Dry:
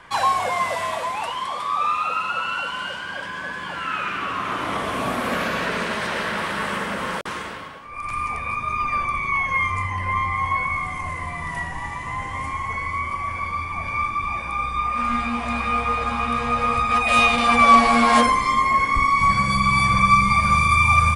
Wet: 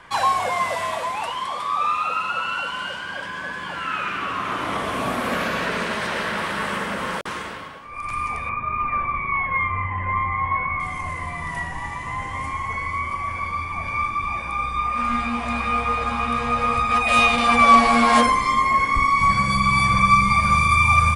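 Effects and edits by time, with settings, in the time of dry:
8.49–10.80 s: low-pass 2.4 kHz 24 dB/octave

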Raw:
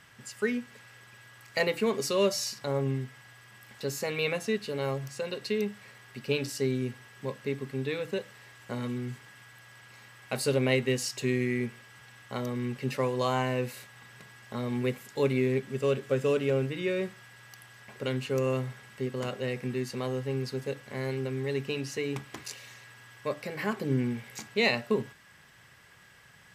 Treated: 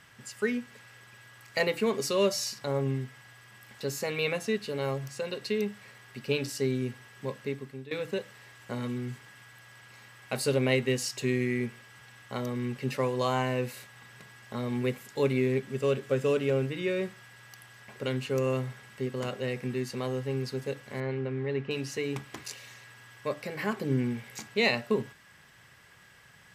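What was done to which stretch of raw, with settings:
7.40–7.91 s: fade out, to -16 dB
21.00–21.71 s: low-pass 2.5 kHz

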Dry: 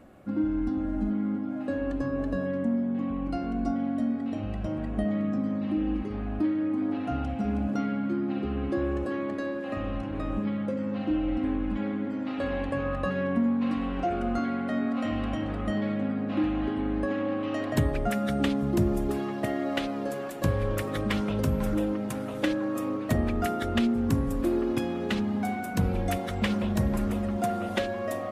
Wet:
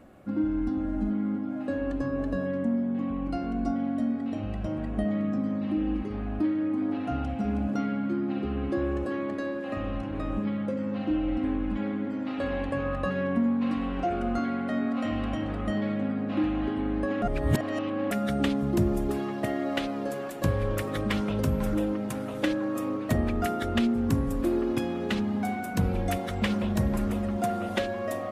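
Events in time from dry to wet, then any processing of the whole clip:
17.22–18.11 s: reverse

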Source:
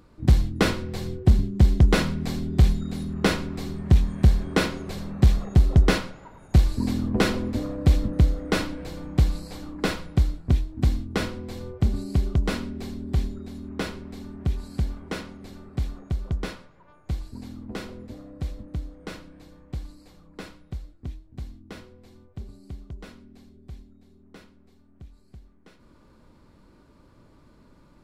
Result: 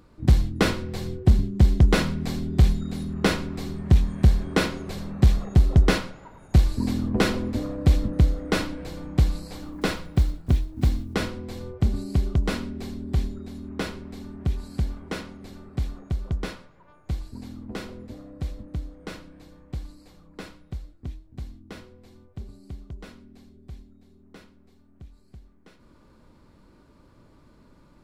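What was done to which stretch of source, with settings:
9.56–11.16 s: block-companded coder 7-bit

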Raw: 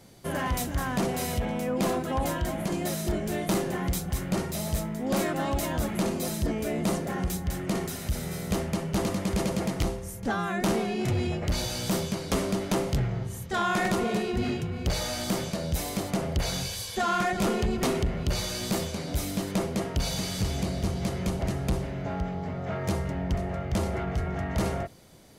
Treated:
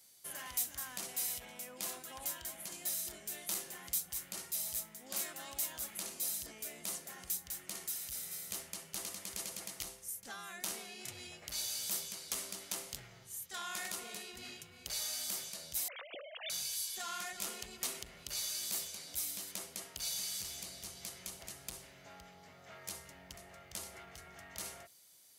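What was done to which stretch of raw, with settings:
15.88–16.50 s: formants replaced by sine waves
whole clip: pre-emphasis filter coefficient 0.97; trim -1.5 dB

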